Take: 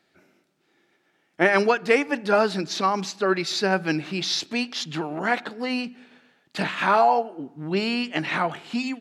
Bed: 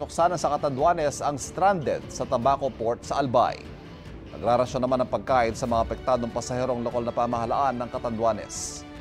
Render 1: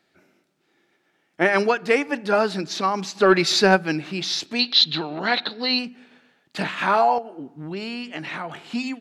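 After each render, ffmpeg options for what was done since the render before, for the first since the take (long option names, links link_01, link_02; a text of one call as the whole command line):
ffmpeg -i in.wav -filter_complex "[0:a]asplit=3[link_01][link_02][link_03];[link_01]afade=type=out:start_time=3.15:duration=0.02[link_04];[link_02]acontrast=83,afade=type=in:start_time=3.15:duration=0.02,afade=type=out:start_time=3.75:duration=0.02[link_05];[link_03]afade=type=in:start_time=3.75:duration=0.02[link_06];[link_04][link_05][link_06]amix=inputs=3:normalize=0,asettb=1/sr,asplit=3[link_07][link_08][link_09];[link_07]atrim=end=4.594[link_10];[link_08]atrim=start=4.59:end=5.79,asetpts=PTS-STARTPTS,afade=type=in:duration=0.004:curve=qsin,afade=type=out:start_time=1.196:duration=0.004:curve=qsin,lowpass=frequency=4000:width_type=q:width=12[link_11];[link_09]atrim=start=5.786[link_12];[link_10][link_11]acrossfade=duration=0.004:curve1=hsin:curve2=qsin[link_13];[link_13][link_12]acrossfade=duration=0.004:curve1=qsin:curve2=hsin,asettb=1/sr,asplit=3[link_14][link_15][link_16];[link_14]atrim=end=7.184[link_17];[link_15]atrim=start=7.18:end=8.64,asetpts=PTS-STARTPTS,afade=type=in:duration=0.004:curve=qsin,afade=type=out:start_time=1.456:duration=0.004:curve=qsin,acompressor=threshold=-30dB:ratio=2.5:attack=3.2:release=140:knee=1:detection=peak[link_18];[link_16]atrim=start=8.636[link_19];[link_17][link_18]acrossfade=duration=0.004:curve1=hsin:curve2=qsin[link_20];[link_20][link_19]acrossfade=duration=0.004:curve1=qsin:curve2=hsin" out.wav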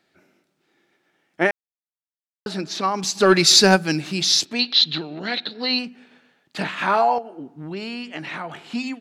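ffmpeg -i in.wav -filter_complex "[0:a]asettb=1/sr,asplit=3[link_01][link_02][link_03];[link_01]atrim=end=3.034[link_04];[link_02]atrim=start=3.03:end=4.45,asetpts=PTS-STARTPTS,afade=type=in:duration=0.004:curve=qsin,afade=type=out:start_time=1.416:duration=0.004:curve=qsin,bass=frequency=250:gain=5,treble=frequency=4000:gain=13[link_05];[link_03]atrim=start=4.446[link_06];[link_04][link_05]acrossfade=duration=0.004:curve1=hsin:curve2=qsin[link_07];[link_07][link_06]acrossfade=duration=0.004:curve1=qsin:curve2=hsin,asettb=1/sr,asplit=3[link_08][link_09][link_10];[link_08]atrim=end=4.984[link_11];[link_09]atrim=start=4.98:end=5.55,asetpts=PTS-STARTPTS,afade=type=in:duration=0.004:curve=qsin,afade=type=out:start_time=0.566:duration=0.004:curve=qsin,equalizer=frequency=1000:width=1:gain=-11.5[link_12];[link_10]atrim=start=5.546[link_13];[link_11][link_12]acrossfade=duration=0.004:curve1=hsin:curve2=qsin[link_14];[link_14][link_13]acrossfade=duration=0.004:curve1=qsin:curve2=hsin,asplit=3[link_15][link_16][link_17];[link_15]atrim=end=1.51,asetpts=PTS-STARTPTS,afade=type=out:start_time=1.506:duration=0.004:curve=hsin[link_18];[link_16]atrim=start=1.51:end=2.46,asetpts=PTS-STARTPTS,volume=0[link_19];[link_17]atrim=start=2.46,asetpts=PTS-STARTPTS,afade=type=in:duration=0.004:curve=hsin[link_20];[link_18][link_19][link_20]concat=n=3:v=0:a=1" out.wav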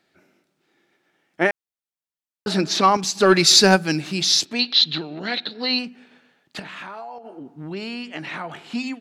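ffmpeg -i in.wav -filter_complex "[0:a]asettb=1/sr,asplit=3[link_01][link_02][link_03];[link_01]atrim=end=2.474[link_04];[link_02]atrim=start=2.47:end=2.97,asetpts=PTS-STARTPTS,afade=type=in:duration=0.004:curve=qsin,afade=type=out:start_time=0.496:duration=0.004:curve=qsin,acontrast=82[link_05];[link_03]atrim=start=2.966[link_06];[link_04][link_05]acrossfade=duration=0.004:curve1=hsin:curve2=qsin[link_07];[link_07][link_06]acrossfade=duration=0.004:curve1=qsin:curve2=hsin,asettb=1/sr,asplit=3[link_08][link_09][link_10];[link_08]atrim=end=6.594[link_11];[link_09]atrim=start=6.59:end=7.58,asetpts=PTS-STARTPTS,afade=type=in:duration=0.004:curve=qsin,afade=type=out:start_time=0.986:duration=0.004:curve=qsin,acompressor=threshold=-32dB:ratio=12:attack=3.2:release=140:knee=1:detection=peak[link_12];[link_10]atrim=start=7.576[link_13];[link_11][link_12]acrossfade=duration=0.004:curve1=hsin:curve2=qsin[link_14];[link_14][link_13]acrossfade=duration=0.004:curve1=qsin:curve2=hsin" out.wav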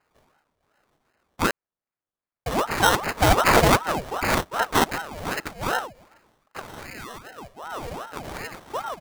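ffmpeg -i in.wav -af "acrusher=samples=19:mix=1:aa=0.000001,aeval=exprs='val(0)*sin(2*PI*700*n/s+700*0.65/2.6*sin(2*PI*2.6*n/s))':channel_layout=same" out.wav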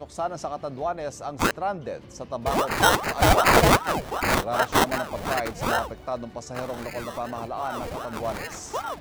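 ffmpeg -i in.wav -i bed.wav -filter_complex "[1:a]volume=-7dB[link_01];[0:a][link_01]amix=inputs=2:normalize=0" out.wav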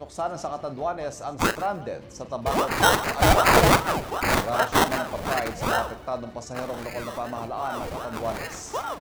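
ffmpeg -i in.wav -filter_complex "[0:a]asplit=2[link_01][link_02];[link_02]adelay=44,volume=-12dB[link_03];[link_01][link_03]amix=inputs=2:normalize=0,aecho=1:1:149|298:0.126|0.0264" out.wav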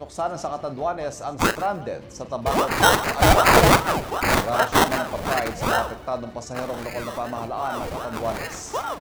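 ffmpeg -i in.wav -af "volume=2.5dB" out.wav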